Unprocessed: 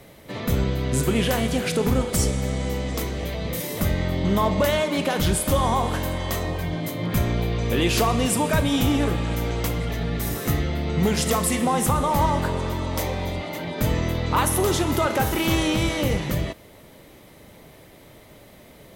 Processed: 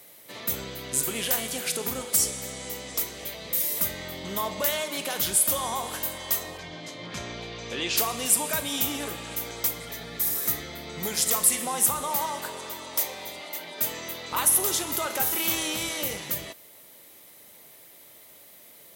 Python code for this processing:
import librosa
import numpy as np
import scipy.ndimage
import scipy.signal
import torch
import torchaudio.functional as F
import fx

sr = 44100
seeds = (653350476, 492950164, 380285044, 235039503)

y = fx.lowpass(x, sr, hz=6400.0, slope=24, at=(6.57, 7.96), fade=0.02)
y = fx.notch(y, sr, hz=2800.0, q=12.0, at=(9.44, 11.31))
y = fx.highpass(y, sr, hz=260.0, slope=6, at=(12.16, 14.32))
y = fx.riaa(y, sr, side='recording')
y = F.gain(torch.from_numpy(y), -7.5).numpy()